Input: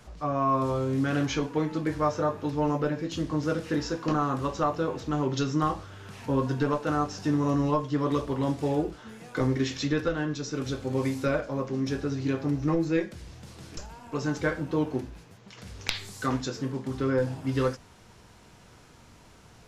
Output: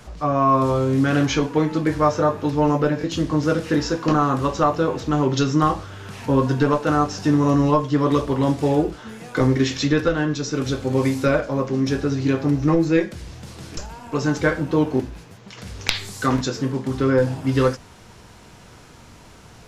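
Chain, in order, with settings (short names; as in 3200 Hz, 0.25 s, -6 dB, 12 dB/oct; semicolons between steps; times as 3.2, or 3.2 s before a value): stuck buffer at 2.99/14.95/16.36, samples 1024, times 1; gain +8 dB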